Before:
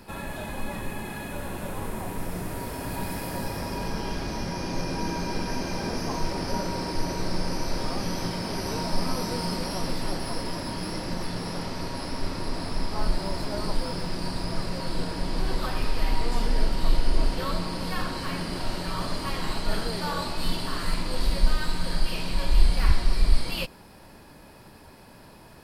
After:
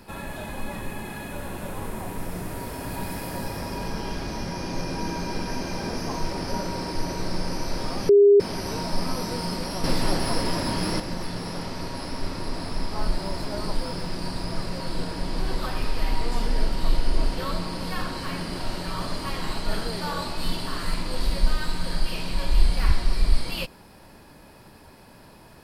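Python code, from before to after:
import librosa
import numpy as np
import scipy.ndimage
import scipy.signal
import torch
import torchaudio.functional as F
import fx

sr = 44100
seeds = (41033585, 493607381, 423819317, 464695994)

y = fx.edit(x, sr, fx.bleep(start_s=8.09, length_s=0.31, hz=405.0, db=-10.5),
    fx.clip_gain(start_s=9.84, length_s=1.16, db=6.0), tone=tone)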